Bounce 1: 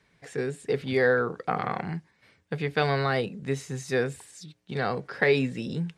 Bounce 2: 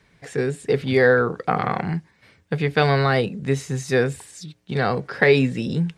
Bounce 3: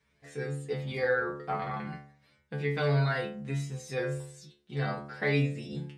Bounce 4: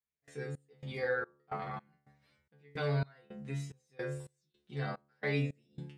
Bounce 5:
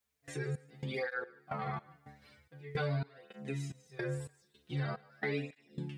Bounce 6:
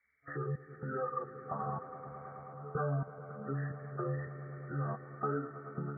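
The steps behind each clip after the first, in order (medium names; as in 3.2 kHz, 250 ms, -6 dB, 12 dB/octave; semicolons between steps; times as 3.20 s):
bass shelf 140 Hz +5 dB; trim +6 dB
inharmonic resonator 70 Hz, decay 0.68 s, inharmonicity 0.002
trance gate "..xx..xxx" 109 bpm -24 dB; trim -5.5 dB
compression 3:1, threshold -48 dBFS, peak gain reduction 15 dB; thinning echo 149 ms, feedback 33%, high-pass 290 Hz, level -21 dB; cancelling through-zero flanger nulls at 0.45 Hz, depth 6.5 ms; trim +13.5 dB
knee-point frequency compression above 1.1 kHz 4:1; spectral gate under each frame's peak -30 dB strong; echo with a slow build-up 108 ms, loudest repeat 5, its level -17 dB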